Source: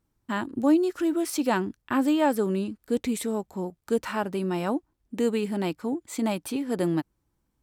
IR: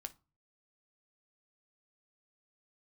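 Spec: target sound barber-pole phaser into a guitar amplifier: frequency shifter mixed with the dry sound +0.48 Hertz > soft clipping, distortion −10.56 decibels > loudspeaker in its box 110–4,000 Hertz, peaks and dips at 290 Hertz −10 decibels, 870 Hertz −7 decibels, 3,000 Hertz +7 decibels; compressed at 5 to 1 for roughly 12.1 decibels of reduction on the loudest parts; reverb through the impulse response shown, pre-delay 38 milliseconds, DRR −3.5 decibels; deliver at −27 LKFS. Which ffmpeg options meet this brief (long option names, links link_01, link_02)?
-filter_complex "[0:a]acompressor=threshold=-30dB:ratio=5,asplit=2[link_01][link_02];[1:a]atrim=start_sample=2205,adelay=38[link_03];[link_02][link_03]afir=irnorm=-1:irlink=0,volume=7.5dB[link_04];[link_01][link_04]amix=inputs=2:normalize=0,asplit=2[link_05][link_06];[link_06]afreqshift=0.48[link_07];[link_05][link_07]amix=inputs=2:normalize=1,asoftclip=threshold=-31dB,highpass=110,equalizer=frequency=290:width_type=q:width=4:gain=-10,equalizer=frequency=870:width_type=q:width=4:gain=-7,equalizer=frequency=3000:width_type=q:width=4:gain=7,lowpass=frequency=4000:width=0.5412,lowpass=frequency=4000:width=1.3066,volume=12.5dB"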